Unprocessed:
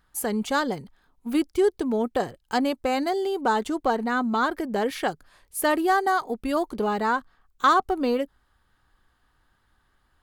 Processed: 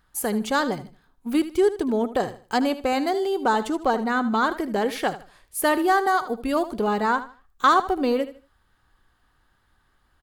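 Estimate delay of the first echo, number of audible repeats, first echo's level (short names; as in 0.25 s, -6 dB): 77 ms, 2, -14.0 dB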